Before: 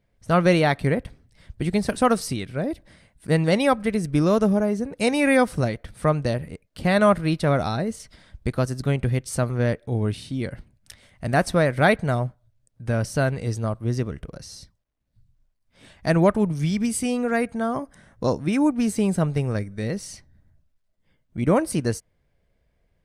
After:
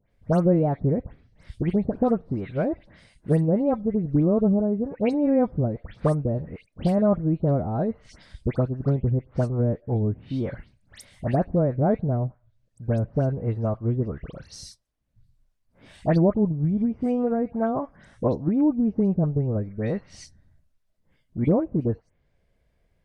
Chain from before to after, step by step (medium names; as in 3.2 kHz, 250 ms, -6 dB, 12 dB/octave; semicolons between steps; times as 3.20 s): low-pass that closes with the level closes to 410 Hz, closed at -19 dBFS; dynamic bell 810 Hz, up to +5 dB, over -39 dBFS, Q 1; phase dispersion highs, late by 114 ms, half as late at 2.5 kHz